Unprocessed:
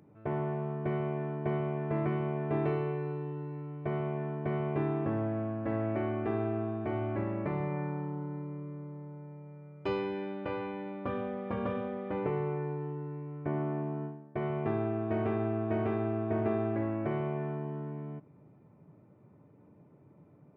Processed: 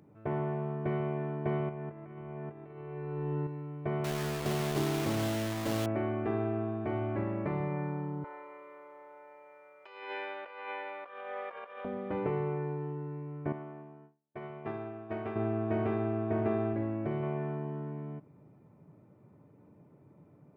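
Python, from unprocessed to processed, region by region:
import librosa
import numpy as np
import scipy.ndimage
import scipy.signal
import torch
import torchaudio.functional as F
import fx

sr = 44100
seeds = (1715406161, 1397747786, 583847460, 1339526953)

y = fx.chain(x, sr, fx.lowpass(hz=3200.0, slope=12),
    fx.hum_notches(base_hz=60, count=7),
    fx.over_compress(threshold_db=-38.0, ratio=-0.5), at=(1.69, 3.47))
y = fx.chain(y, sr, fx.lowpass(hz=1400.0, slope=24),
    fx.quant_dither(seeds[0], bits=6, dither='none'), at=(4.04, 5.86))
y = fx.chain(y, sr, fx.highpass(hz=520.0, slope=24),
    fx.peak_eq(hz=2000.0, db=7.0, octaves=1.7),
    fx.over_compress(threshold_db=-41.0, ratio=-0.5), at=(8.24, 11.85))
y = fx.chain(y, sr, fx.low_shelf(hz=450.0, db=-7.5),
    fx.upward_expand(threshold_db=-54.0, expansion=2.5), at=(13.52, 15.36))
y = fx.chain(y, sr, fx.highpass(hz=48.0, slope=12),
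    fx.peak_eq(hz=1300.0, db=-5.0, octaves=2.4), at=(16.73, 17.23))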